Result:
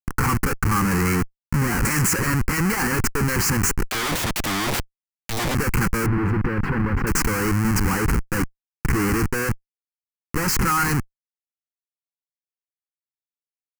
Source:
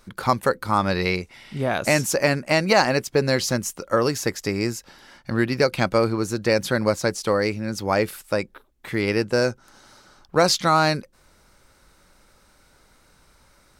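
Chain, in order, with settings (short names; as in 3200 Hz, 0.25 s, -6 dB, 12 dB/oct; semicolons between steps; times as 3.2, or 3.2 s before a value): dynamic EQ 7600 Hz, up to +5 dB, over -46 dBFS, Q 2.9; Schmitt trigger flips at -30.5 dBFS; fixed phaser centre 1500 Hz, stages 4; 3.89–5.55 wrapped overs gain 26 dB; 6.06–7.07 air absorption 480 m; gain +6.5 dB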